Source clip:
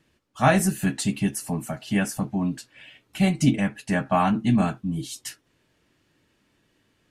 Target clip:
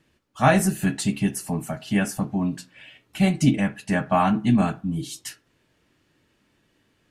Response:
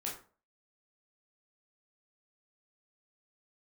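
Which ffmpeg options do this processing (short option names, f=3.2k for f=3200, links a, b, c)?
-filter_complex "[0:a]asplit=2[a][b];[1:a]atrim=start_sample=2205,lowpass=4.3k[c];[b][c]afir=irnorm=-1:irlink=0,volume=-14dB[d];[a][d]amix=inputs=2:normalize=0"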